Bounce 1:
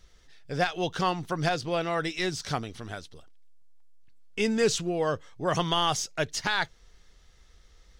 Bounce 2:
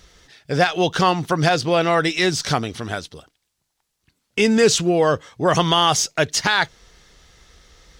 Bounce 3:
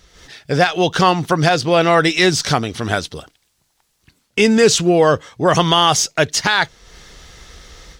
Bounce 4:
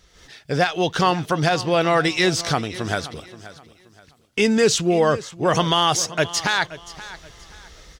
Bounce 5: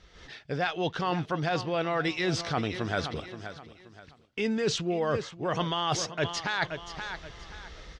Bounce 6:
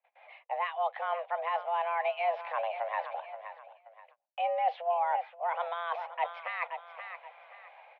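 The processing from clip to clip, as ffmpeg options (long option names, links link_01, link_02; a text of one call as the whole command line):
ffmpeg -i in.wav -filter_complex "[0:a]highpass=frequency=85:poles=1,asplit=2[link_01][link_02];[link_02]alimiter=limit=-21dB:level=0:latency=1:release=100,volume=0.5dB[link_03];[link_01][link_03]amix=inputs=2:normalize=0,volume=5.5dB" out.wav
ffmpeg -i in.wav -af "dynaudnorm=framelen=120:gausssize=3:maxgain=11dB,volume=-1dB" out.wav
ffmpeg -i in.wav -af "aecho=1:1:527|1054|1581:0.15|0.0464|0.0144,volume=-5dB" out.wav
ffmpeg -i in.wav -af "lowpass=4000,areverse,acompressor=threshold=-26dB:ratio=6,areverse" out.wav
ffmpeg -i in.wav -af "equalizer=frequency=1200:width_type=o:width=1.5:gain=-12.5,agate=range=-24dB:threshold=-54dB:ratio=16:detection=peak,highpass=frequency=250:width_type=q:width=0.5412,highpass=frequency=250:width_type=q:width=1.307,lowpass=frequency=2200:width_type=q:width=0.5176,lowpass=frequency=2200:width_type=q:width=0.7071,lowpass=frequency=2200:width_type=q:width=1.932,afreqshift=340,volume=3dB" out.wav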